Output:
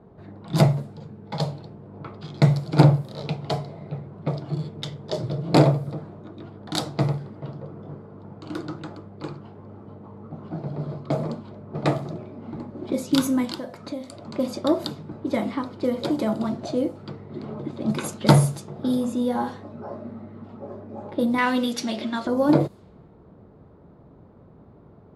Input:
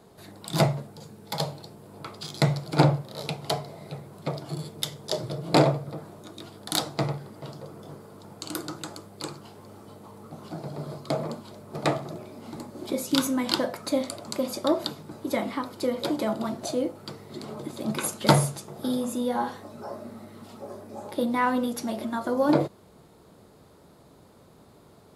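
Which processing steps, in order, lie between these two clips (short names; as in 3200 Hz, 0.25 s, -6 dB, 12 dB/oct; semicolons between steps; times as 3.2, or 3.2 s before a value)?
21.38–22.27 weighting filter D; low-pass opened by the level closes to 1400 Hz, open at -22.5 dBFS; low shelf 340 Hz +9 dB; 13.45–14.34 compressor 2.5:1, threshold -33 dBFS, peak gain reduction 11.5 dB; gain -1 dB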